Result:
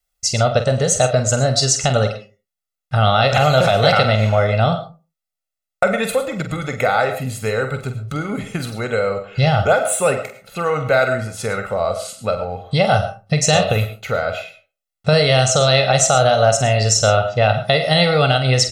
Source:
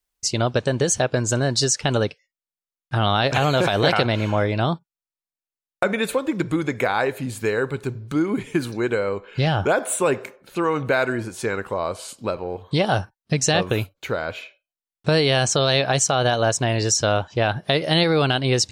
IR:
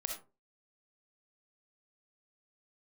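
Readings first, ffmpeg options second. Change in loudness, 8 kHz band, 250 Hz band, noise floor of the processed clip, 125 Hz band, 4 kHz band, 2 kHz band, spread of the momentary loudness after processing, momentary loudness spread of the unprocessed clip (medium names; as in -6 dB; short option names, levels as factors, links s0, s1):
+4.5 dB, +4.5 dB, 0.0 dB, -84 dBFS, +6.0 dB, +4.0 dB, +3.5 dB, 11 LU, 9 LU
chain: -filter_complex "[0:a]aecho=1:1:1.5:0.81,asplit=2[s0][s1];[1:a]atrim=start_sample=2205,adelay=46[s2];[s1][s2]afir=irnorm=-1:irlink=0,volume=0.422[s3];[s0][s3]amix=inputs=2:normalize=0,volume=1.19"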